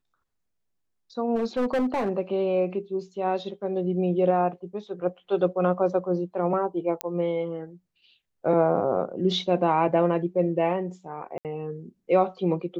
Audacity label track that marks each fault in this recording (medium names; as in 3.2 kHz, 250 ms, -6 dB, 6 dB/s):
1.350000	2.100000	clipped -21 dBFS
7.010000	7.010000	pop -10 dBFS
11.380000	11.450000	dropout 68 ms